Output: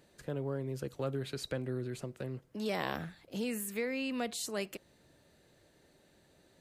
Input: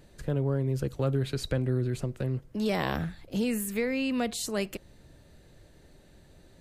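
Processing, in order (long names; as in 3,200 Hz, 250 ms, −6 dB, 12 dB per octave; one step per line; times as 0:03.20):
high-pass filter 270 Hz 6 dB per octave
level −4.5 dB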